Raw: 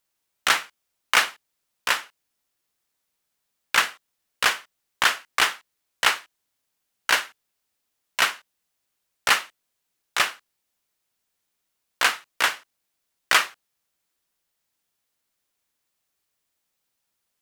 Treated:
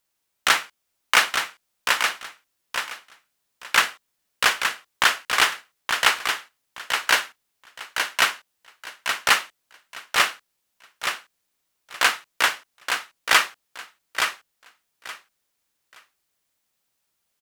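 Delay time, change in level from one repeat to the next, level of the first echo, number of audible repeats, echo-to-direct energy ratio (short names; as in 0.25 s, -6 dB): 0.872 s, -14.0 dB, -6.0 dB, 3, -6.0 dB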